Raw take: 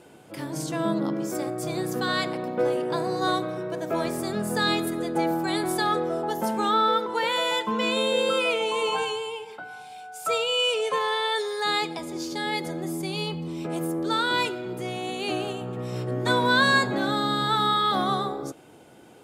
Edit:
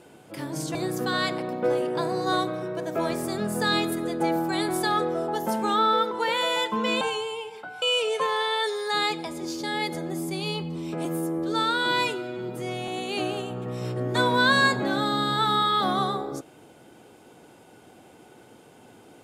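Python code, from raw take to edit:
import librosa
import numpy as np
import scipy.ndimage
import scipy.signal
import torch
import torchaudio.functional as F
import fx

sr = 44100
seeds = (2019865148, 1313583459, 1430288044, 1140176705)

y = fx.edit(x, sr, fx.cut(start_s=0.75, length_s=0.95),
    fx.cut(start_s=7.96, length_s=1.0),
    fx.cut(start_s=9.77, length_s=0.77),
    fx.stretch_span(start_s=13.77, length_s=1.22, factor=1.5), tone=tone)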